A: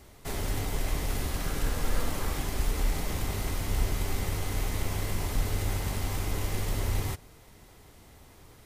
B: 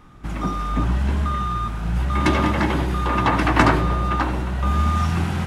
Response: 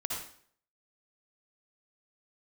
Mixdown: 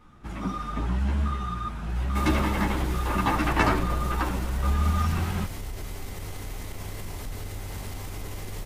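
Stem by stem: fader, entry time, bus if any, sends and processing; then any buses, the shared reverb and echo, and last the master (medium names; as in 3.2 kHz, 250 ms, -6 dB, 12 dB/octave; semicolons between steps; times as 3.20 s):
-2.5 dB, 1.90 s, no send, peak limiter -24 dBFS, peak gain reduction 10 dB
-3.0 dB, 0.00 s, no send, three-phase chorus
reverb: none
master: none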